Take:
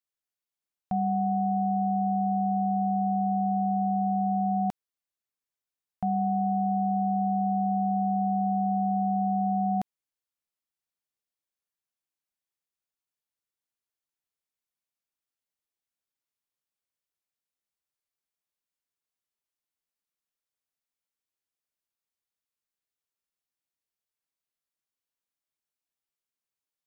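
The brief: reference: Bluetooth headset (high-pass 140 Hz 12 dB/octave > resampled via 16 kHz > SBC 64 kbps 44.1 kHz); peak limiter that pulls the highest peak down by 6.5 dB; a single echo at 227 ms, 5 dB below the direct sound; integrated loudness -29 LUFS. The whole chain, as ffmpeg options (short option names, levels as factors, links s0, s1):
-af "alimiter=level_in=1.33:limit=0.0631:level=0:latency=1,volume=0.75,highpass=140,aecho=1:1:227:0.562,aresample=16000,aresample=44100,volume=1.5" -ar 44100 -c:a sbc -b:a 64k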